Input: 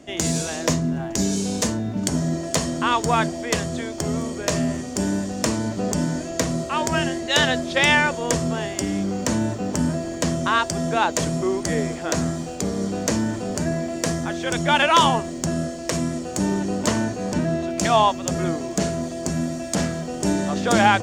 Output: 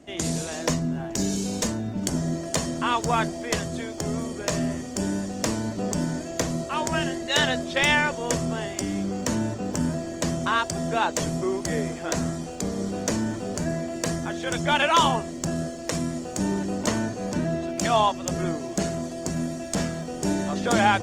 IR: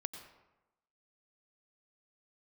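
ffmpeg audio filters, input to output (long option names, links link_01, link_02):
-af "volume=-3.5dB" -ar 48000 -c:a libopus -b:a 20k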